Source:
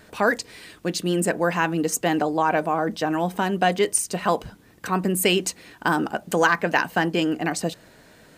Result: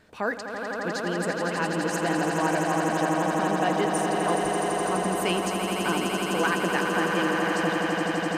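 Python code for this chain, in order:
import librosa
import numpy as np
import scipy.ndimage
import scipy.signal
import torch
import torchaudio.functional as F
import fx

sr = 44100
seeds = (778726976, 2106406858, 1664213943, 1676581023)

p1 = fx.high_shelf(x, sr, hz=9000.0, db=-11.5)
p2 = p1 + fx.echo_swell(p1, sr, ms=84, loudest=8, wet_db=-6.5, dry=0)
y = p2 * librosa.db_to_amplitude(-7.5)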